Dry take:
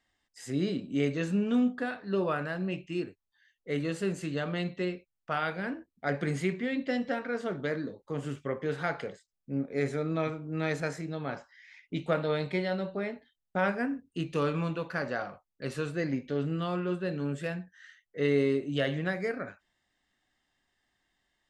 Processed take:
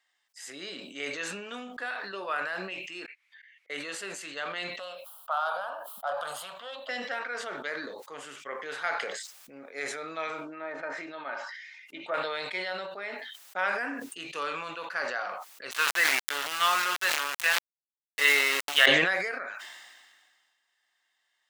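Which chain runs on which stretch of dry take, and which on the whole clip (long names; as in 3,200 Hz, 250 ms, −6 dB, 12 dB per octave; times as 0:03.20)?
0:03.06–0:03.70: resonant band-pass 2,200 Hz, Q 8.7 + volume swells 213 ms
0:04.79–0:06.89: phase distortion by the signal itself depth 0.061 ms + drawn EQ curve 130 Hz 0 dB, 240 Hz −9 dB, 380 Hz −19 dB, 570 Hz +14 dB, 1,300 Hz +14 dB, 2,100 Hz −21 dB, 3,100 Hz +8 dB, 6,200 Hz −5 dB, 11,000 Hz +13 dB + downward compressor 1.5 to 1, threshold −43 dBFS
0:10.41–0:12.14: treble cut that deepens with the level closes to 1,000 Hz, closed at −27 dBFS + comb filter 3.3 ms, depth 47%
0:15.71–0:18.86: flat-topped bell 1,800 Hz +13 dB 2.7 octaves + centre clipping without the shift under −28.5 dBFS
whole clip: high-pass filter 930 Hz 12 dB per octave; level that may fall only so fast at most 34 dB per second; level +3 dB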